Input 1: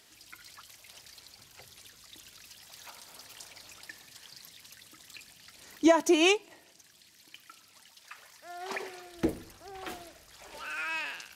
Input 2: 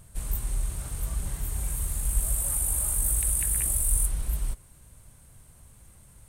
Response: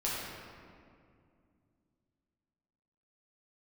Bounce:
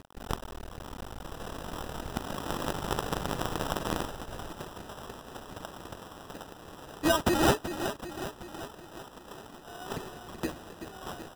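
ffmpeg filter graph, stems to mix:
-filter_complex "[0:a]bass=frequency=250:gain=7,treble=frequency=4000:gain=10,adelay=1200,volume=0dB,asplit=2[link_01][link_02];[link_02]volume=-10dB[link_03];[1:a]equalizer=frequency=770:width_type=o:width=0.69:gain=4,acompressor=threshold=-28dB:ratio=8,acrusher=bits=5:dc=4:mix=0:aa=0.000001,volume=2.5dB[link_04];[link_03]aecho=0:1:379|758|1137|1516|1895|2274|2653|3032|3411:1|0.59|0.348|0.205|0.121|0.0715|0.0422|0.0249|0.0147[link_05];[link_01][link_04][link_05]amix=inputs=3:normalize=0,lowshelf=frequency=440:gain=-12,acrusher=samples=20:mix=1:aa=0.000001"

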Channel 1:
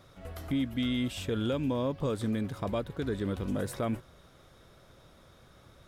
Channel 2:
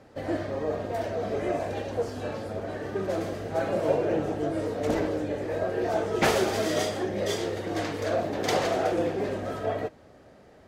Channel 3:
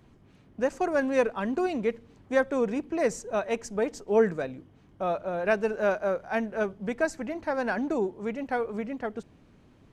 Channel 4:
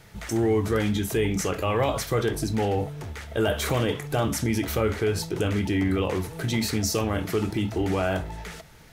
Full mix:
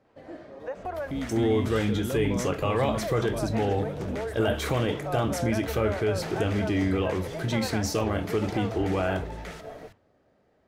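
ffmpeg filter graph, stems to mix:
ffmpeg -i stem1.wav -i stem2.wav -i stem3.wav -i stem4.wav -filter_complex "[0:a]adelay=600,volume=0dB[link_01];[1:a]volume=-12.5dB[link_02];[2:a]highpass=frequency=540:width=0.5412,highpass=frequency=540:width=1.3066,aemphasis=mode=reproduction:type=riaa,adelay=50,volume=-1dB,asplit=3[link_03][link_04][link_05];[link_03]atrim=end=1.11,asetpts=PTS-STARTPTS,afade=type=out:start_time=1.106:duration=0.004:curve=hsin[link_06];[link_04]atrim=start=1.11:end=2.88,asetpts=PTS-STARTPTS,volume=0[link_07];[link_05]atrim=start=2.88,asetpts=PTS-STARTPTS,afade=type=in:duration=0.004:curve=hsin[link_08];[link_06][link_07][link_08]concat=n=3:v=0:a=1[link_09];[3:a]adelay=1000,volume=-1.5dB[link_10];[link_01][link_02][link_09]amix=inputs=3:normalize=0,bandreject=frequency=50:width_type=h:width=6,bandreject=frequency=100:width_type=h:width=6,alimiter=level_in=1dB:limit=-24dB:level=0:latency=1:release=97,volume=-1dB,volume=0dB[link_11];[link_10][link_11]amix=inputs=2:normalize=0,highshelf=frequency=5900:gain=-7.5" out.wav

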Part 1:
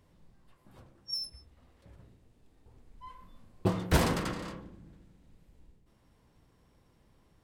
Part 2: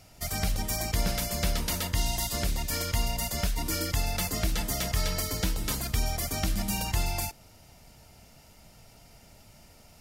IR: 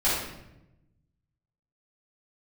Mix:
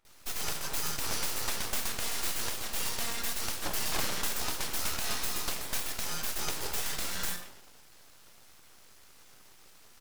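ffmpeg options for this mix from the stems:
-filter_complex "[0:a]volume=-2.5dB[link_01];[1:a]adelay=50,volume=0dB,asplit=2[link_02][link_03];[link_03]volume=-15dB[link_04];[2:a]atrim=start_sample=2205[link_05];[link_04][link_05]afir=irnorm=-1:irlink=0[link_06];[link_01][link_02][link_06]amix=inputs=3:normalize=0,highpass=280,aeval=exprs='abs(val(0))':channel_layout=same"

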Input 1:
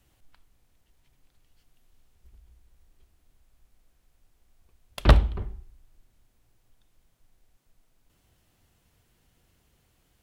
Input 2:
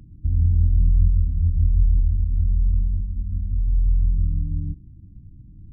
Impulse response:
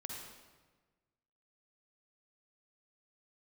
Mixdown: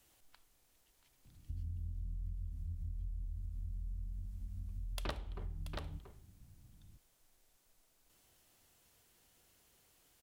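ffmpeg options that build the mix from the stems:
-filter_complex "[0:a]bass=frequency=250:gain=-9,treble=frequency=4000:gain=6,volume=-2.5dB,asplit=2[link_01][link_02];[link_02]volume=-14dB[link_03];[1:a]adelay=1250,volume=-17dB[link_04];[link_03]aecho=0:1:682:1[link_05];[link_01][link_04][link_05]amix=inputs=3:normalize=0,acompressor=threshold=-39dB:ratio=5"

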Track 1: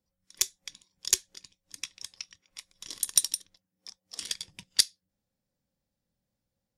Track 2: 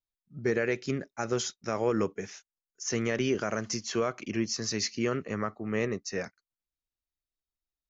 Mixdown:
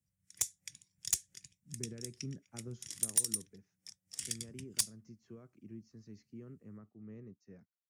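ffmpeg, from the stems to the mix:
ffmpeg -i stem1.wav -i stem2.wav -filter_complex "[0:a]equalizer=frequency=125:width_type=o:width=1:gain=12,equalizer=frequency=250:width_type=o:width=1:gain=-5,equalizer=frequency=500:width_type=o:width=1:gain=-10,equalizer=frequency=1000:width_type=o:width=1:gain=-12,equalizer=frequency=2000:width_type=o:width=1:gain=4,equalizer=frequency=4000:width_type=o:width=1:gain=-11,equalizer=frequency=8000:width_type=o:width=1:gain=7,volume=-3dB[link_01];[1:a]firequalizer=gain_entry='entry(180,0);entry(580,-16);entry(3100,-24)':delay=0.05:min_phase=1,adelay=1350,volume=-6.5dB,afade=type=out:start_time=2.86:duration=0.39:silence=0.398107[link_02];[link_01][link_02]amix=inputs=2:normalize=0,highpass=57,acrossover=split=240|3000[link_03][link_04][link_05];[link_04]acompressor=threshold=-49dB:ratio=6[link_06];[link_03][link_06][link_05]amix=inputs=3:normalize=0,asoftclip=type=tanh:threshold=-20.5dB" out.wav

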